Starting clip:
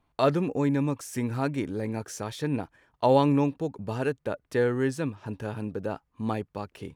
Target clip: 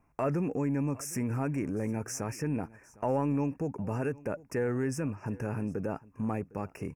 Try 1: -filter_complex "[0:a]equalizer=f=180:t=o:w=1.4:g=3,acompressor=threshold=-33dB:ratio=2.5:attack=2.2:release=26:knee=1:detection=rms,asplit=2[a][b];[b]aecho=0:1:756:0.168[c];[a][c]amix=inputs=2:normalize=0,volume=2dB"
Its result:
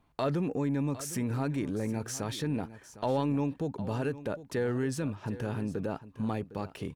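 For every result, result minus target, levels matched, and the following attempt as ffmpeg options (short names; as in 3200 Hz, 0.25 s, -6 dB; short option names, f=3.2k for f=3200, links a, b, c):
4000 Hz band +7.5 dB; echo-to-direct +6.5 dB
-filter_complex "[0:a]asuperstop=centerf=3700:order=12:qfactor=1.6,equalizer=f=180:t=o:w=1.4:g=3,acompressor=threshold=-33dB:ratio=2.5:attack=2.2:release=26:knee=1:detection=rms,asplit=2[a][b];[b]aecho=0:1:756:0.168[c];[a][c]amix=inputs=2:normalize=0,volume=2dB"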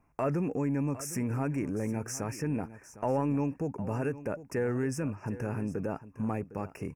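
echo-to-direct +6.5 dB
-filter_complex "[0:a]asuperstop=centerf=3700:order=12:qfactor=1.6,equalizer=f=180:t=o:w=1.4:g=3,acompressor=threshold=-33dB:ratio=2.5:attack=2.2:release=26:knee=1:detection=rms,asplit=2[a][b];[b]aecho=0:1:756:0.0794[c];[a][c]amix=inputs=2:normalize=0,volume=2dB"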